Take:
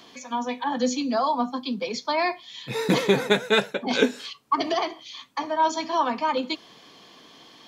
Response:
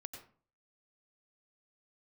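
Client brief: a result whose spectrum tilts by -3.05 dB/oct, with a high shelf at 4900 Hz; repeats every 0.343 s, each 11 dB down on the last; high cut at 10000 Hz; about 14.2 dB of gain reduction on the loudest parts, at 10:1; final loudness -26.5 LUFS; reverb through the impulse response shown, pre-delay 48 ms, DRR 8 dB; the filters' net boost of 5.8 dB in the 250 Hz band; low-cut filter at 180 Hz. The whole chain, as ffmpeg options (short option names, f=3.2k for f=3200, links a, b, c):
-filter_complex "[0:a]highpass=180,lowpass=10k,equalizer=f=250:t=o:g=8,highshelf=f=4.9k:g=-4.5,acompressor=threshold=-25dB:ratio=10,aecho=1:1:343|686|1029:0.282|0.0789|0.0221,asplit=2[a][b];[1:a]atrim=start_sample=2205,adelay=48[c];[b][c]afir=irnorm=-1:irlink=0,volume=-4dB[d];[a][d]amix=inputs=2:normalize=0,volume=3dB"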